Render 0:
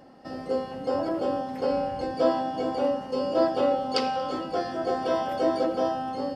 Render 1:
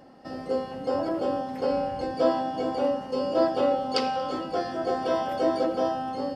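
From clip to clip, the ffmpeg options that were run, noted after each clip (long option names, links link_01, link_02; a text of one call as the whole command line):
ffmpeg -i in.wav -af anull out.wav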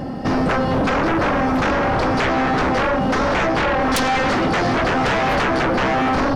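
ffmpeg -i in.wav -af "bass=frequency=250:gain=12,treble=frequency=4000:gain=-4,acompressor=threshold=-27dB:ratio=6,aeval=exprs='0.106*sin(PI/2*3.98*val(0)/0.106)':channel_layout=same,volume=4.5dB" out.wav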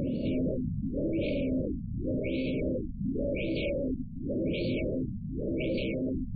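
ffmpeg -i in.wav -af "afftfilt=real='re*(1-between(b*sr/4096,640,2200))':imag='im*(1-between(b*sr/4096,640,2200))':win_size=4096:overlap=0.75,alimiter=limit=-23.5dB:level=0:latency=1:release=88,afftfilt=real='re*lt(b*sr/1024,230*pow(4700/230,0.5+0.5*sin(2*PI*0.9*pts/sr)))':imag='im*lt(b*sr/1024,230*pow(4700/230,0.5+0.5*sin(2*PI*0.9*pts/sr)))':win_size=1024:overlap=0.75" out.wav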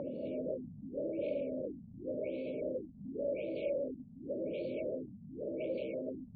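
ffmpeg -i in.wav -filter_complex "[0:a]asplit=2[link_01][link_02];[link_02]alimiter=level_in=10dB:limit=-24dB:level=0:latency=1:release=41,volume=-10dB,volume=3dB[link_03];[link_01][link_03]amix=inputs=2:normalize=0,bandpass=frequency=740:width_type=q:width=1.8:csg=0,volume=-2dB" out.wav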